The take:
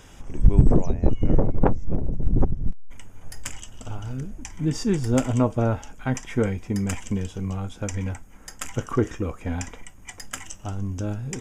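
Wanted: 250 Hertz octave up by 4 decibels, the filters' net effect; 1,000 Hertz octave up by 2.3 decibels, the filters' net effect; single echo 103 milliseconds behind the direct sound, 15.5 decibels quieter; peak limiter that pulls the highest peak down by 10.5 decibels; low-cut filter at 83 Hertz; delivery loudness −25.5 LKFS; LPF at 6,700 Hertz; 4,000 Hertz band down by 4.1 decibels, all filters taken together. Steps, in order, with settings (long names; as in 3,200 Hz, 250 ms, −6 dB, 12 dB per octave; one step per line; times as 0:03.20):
high-pass filter 83 Hz
low-pass filter 6,700 Hz
parametric band 250 Hz +5 dB
parametric band 1,000 Hz +3 dB
parametric band 4,000 Hz −5.5 dB
brickwall limiter −13 dBFS
single-tap delay 103 ms −15.5 dB
level +1.5 dB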